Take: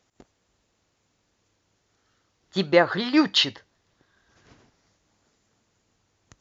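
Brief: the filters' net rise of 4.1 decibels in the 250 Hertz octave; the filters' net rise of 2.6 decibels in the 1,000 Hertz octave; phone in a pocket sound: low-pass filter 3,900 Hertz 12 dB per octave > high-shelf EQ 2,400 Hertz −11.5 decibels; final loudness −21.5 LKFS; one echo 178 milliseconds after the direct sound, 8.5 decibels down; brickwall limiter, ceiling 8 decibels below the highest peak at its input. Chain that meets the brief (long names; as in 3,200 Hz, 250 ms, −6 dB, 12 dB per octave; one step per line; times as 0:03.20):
parametric band 250 Hz +5.5 dB
parametric band 1,000 Hz +5.5 dB
brickwall limiter −9.5 dBFS
low-pass filter 3,900 Hz 12 dB per octave
high-shelf EQ 2,400 Hz −11.5 dB
single-tap delay 178 ms −8.5 dB
level +2.5 dB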